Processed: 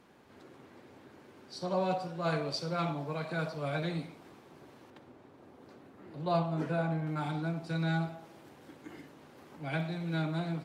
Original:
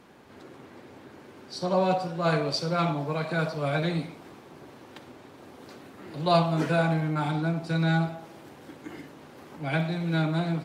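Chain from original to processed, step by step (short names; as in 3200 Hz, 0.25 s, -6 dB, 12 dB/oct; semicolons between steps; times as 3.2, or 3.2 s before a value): 4.9–7.07 high shelf 2000 Hz -9.5 dB; gain -7 dB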